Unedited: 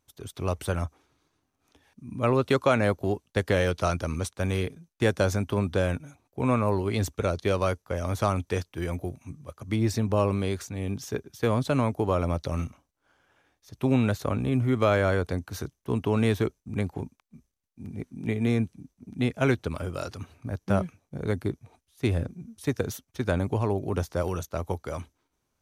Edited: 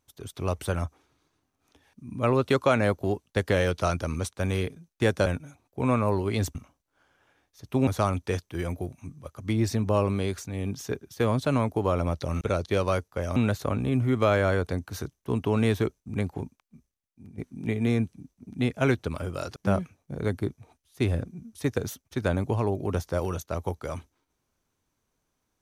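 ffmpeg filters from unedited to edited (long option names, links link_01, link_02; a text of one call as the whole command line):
ffmpeg -i in.wav -filter_complex "[0:a]asplit=8[link_01][link_02][link_03][link_04][link_05][link_06][link_07][link_08];[link_01]atrim=end=5.262[link_09];[link_02]atrim=start=5.858:end=7.152[link_10];[link_03]atrim=start=12.638:end=13.962[link_11];[link_04]atrim=start=8.098:end=12.642[link_12];[link_05]atrim=start=7.148:end=8.102[link_13];[link_06]atrim=start=13.958:end=17.98,asetpts=PTS-STARTPTS,afade=type=out:start_time=3.072:duration=0.95:silence=0.316228[link_14];[link_07]atrim=start=17.98:end=20.162,asetpts=PTS-STARTPTS,afade=type=in:duration=0.004:curve=hsin:silence=0.316228[link_15];[link_08]atrim=start=20.588[link_16];[link_09][link_10]acrossfade=duration=0.004:curve1=hsin:curve2=hsin[link_17];[link_17][link_11]acrossfade=duration=0.004:curve1=hsin:curve2=hsin[link_18];[link_18][link_12]acrossfade=duration=0.004:curve1=hsin:curve2=hsin[link_19];[link_19][link_13]acrossfade=duration=0.004:curve1=hsin:curve2=hsin[link_20];[link_14][link_15]concat=n=2:v=0:a=1[link_21];[link_20][link_21]acrossfade=duration=0.004:curve1=hsin:curve2=hsin[link_22];[link_22][link_16]acrossfade=duration=0.004:curve1=hsin:curve2=hsin" out.wav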